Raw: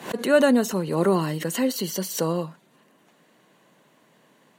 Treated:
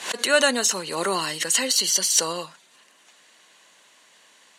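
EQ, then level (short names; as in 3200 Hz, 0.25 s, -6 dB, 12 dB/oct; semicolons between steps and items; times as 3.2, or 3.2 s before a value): weighting filter ITU-R 468; +1.5 dB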